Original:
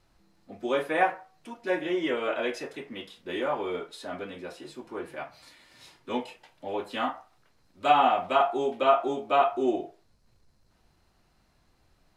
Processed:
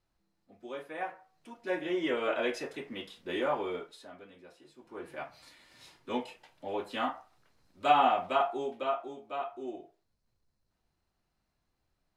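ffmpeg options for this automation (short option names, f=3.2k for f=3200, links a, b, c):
-af "volume=10dB,afade=t=in:st=0.99:d=1.32:silence=0.237137,afade=t=out:st=3.52:d=0.62:silence=0.223872,afade=t=in:st=4.77:d=0.43:silence=0.266073,afade=t=out:st=8.1:d=1.01:silence=0.281838"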